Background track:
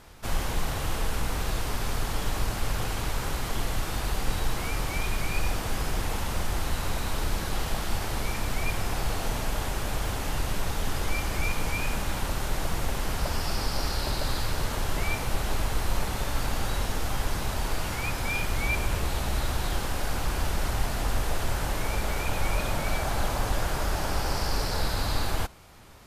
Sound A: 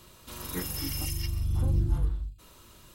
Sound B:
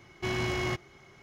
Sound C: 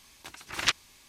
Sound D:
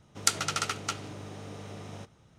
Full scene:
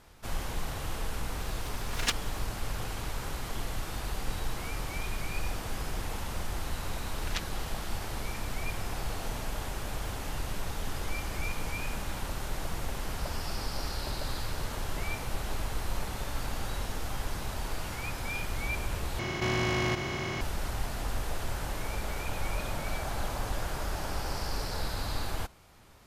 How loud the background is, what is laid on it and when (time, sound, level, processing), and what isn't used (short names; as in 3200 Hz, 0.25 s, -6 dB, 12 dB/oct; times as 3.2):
background track -6 dB
1.4 add C -2.5 dB + minimum comb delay 4.2 ms
6.68 add C -12 dB
19.19 replace with B -1 dB + per-bin compression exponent 0.2
not used: A, D